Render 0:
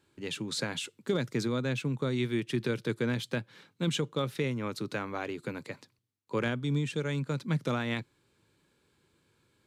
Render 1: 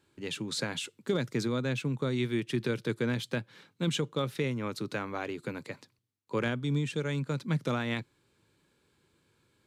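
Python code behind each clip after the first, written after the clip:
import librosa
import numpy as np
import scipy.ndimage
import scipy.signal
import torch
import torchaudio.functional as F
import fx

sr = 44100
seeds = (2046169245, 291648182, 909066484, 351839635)

y = x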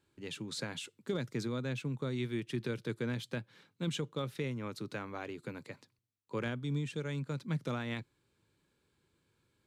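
y = fx.low_shelf(x, sr, hz=93.0, db=5.5)
y = y * librosa.db_to_amplitude(-6.5)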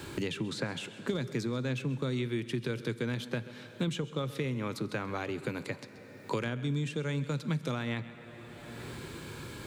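y = x + 10.0 ** (-19.5 / 20.0) * np.pad(x, (int(131 * sr / 1000.0), 0))[:len(x)]
y = fx.rev_plate(y, sr, seeds[0], rt60_s=1.9, hf_ratio=0.95, predelay_ms=0, drr_db=16.0)
y = fx.band_squash(y, sr, depth_pct=100)
y = y * librosa.db_to_amplitude(3.0)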